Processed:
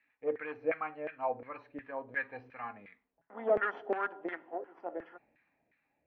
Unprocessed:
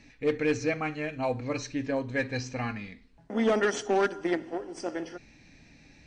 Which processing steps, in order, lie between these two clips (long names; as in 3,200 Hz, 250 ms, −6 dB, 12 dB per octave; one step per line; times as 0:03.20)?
low-pass filter 3,100 Hz 24 dB per octave
in parallel at −1 dB: downward compressor, threshold −33 dBFS, peak gain reduction 11.5 dB
on the sum: auto-filter band-pass saw down 2.8 Hz 510–1,700 Hz
multiband upward and downward expander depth 40%
level −3 dB